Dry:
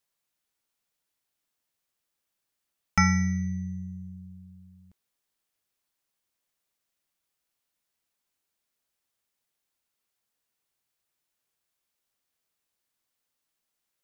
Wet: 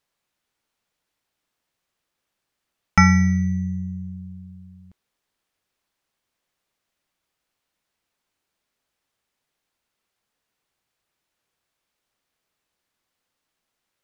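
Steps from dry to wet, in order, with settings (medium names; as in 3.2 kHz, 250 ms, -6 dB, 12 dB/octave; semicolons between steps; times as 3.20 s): low-pass 3.5 kHz 6 dB/octave; trim +8 dB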